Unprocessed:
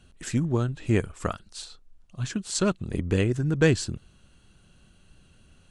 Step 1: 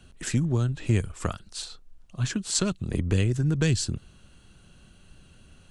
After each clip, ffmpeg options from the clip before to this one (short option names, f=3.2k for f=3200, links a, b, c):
-filter_complex "[0:a]acrossover=split=160|3000[a][b][c];[b]acompressor=threshold=-31dB:ratio=6[d];[a][d][c]amix=inputs=3:normalize=0,volume=3.5dB"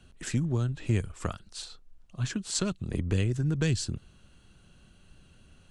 -af "highshelf=f=8.7k:g=-4,volume=-3.5dB"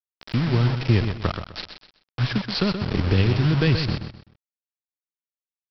-af "dynaudnorm=f=140:g=5:m=7.5dB,aresample=11025,acrusher=bits=4:mix=0:aa=0.000001,aresample=44100,aecho=1:1:127|254|381:0.376|0.109|0.0316"